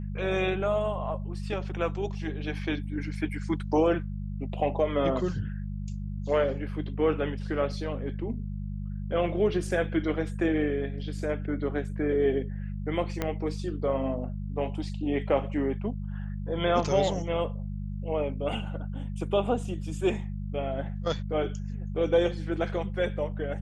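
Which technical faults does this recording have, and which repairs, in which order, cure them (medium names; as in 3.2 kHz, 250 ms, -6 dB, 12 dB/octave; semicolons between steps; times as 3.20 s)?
hum 50 Hz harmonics 4 -34 dBFS
13.22 s: pop -14 dBFS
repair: de-click; de-hum 50 Hz, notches 4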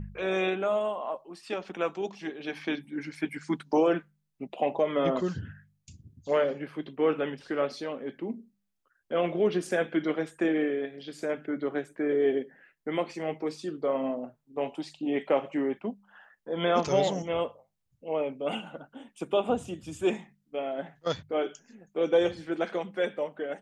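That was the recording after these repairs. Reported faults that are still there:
13.22 s: pop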